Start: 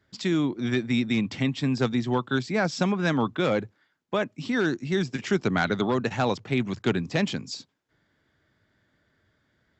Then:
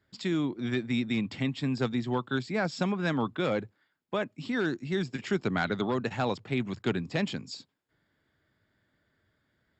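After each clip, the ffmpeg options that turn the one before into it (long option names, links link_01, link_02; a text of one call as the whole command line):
ffmpeg -i in.wav -af "bandreject=frequency=6000:width=5.8,volume=-4.5dB" out.wav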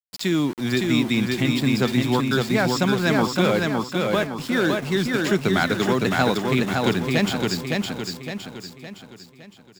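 ffmpeg -i in.wav -af "aemphasis=mode=production:type=cd,aeval=exprs='val(0)*gte(abs(val(0)),0.01)':channel_layout=same,aecho=1:1:562|1124|1686|2248|2810|3372:0.708|0.319|0.143|0.0645|0.029|0.0131,volume=7.5dB" out.wav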